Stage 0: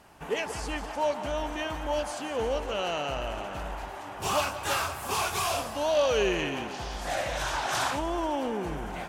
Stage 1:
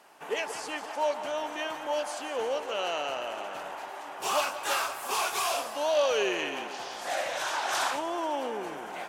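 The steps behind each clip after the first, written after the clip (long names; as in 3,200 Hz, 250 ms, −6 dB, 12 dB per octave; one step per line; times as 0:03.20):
high-pass filter 390 Hz 12 dB per octave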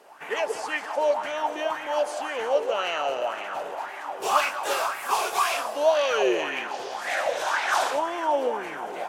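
auto-filter bell 1.9 Hz 420–2,200 Hz +13 dB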